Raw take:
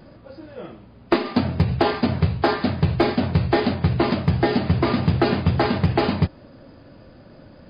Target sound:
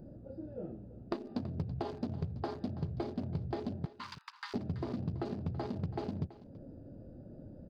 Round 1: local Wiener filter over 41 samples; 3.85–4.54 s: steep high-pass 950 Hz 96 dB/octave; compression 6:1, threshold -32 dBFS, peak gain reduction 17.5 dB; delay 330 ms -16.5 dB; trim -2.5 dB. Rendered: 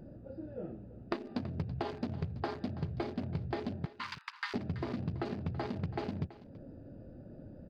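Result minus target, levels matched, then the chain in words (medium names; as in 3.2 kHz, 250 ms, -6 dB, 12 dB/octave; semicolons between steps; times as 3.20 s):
2 kHz band +7.0 dB
local Wiener filter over 41 samples; 3.85–4.54 s: steep high-pass 950 Hz 96 dB/octave; compression 6:1, threshold -32 dBFS, peak gain reduction 17.5 dB; peaking EQ 2.1 kHz -9 dB 1.5 oct; delay 330 ms -16.5 dB; trim -2.5 dB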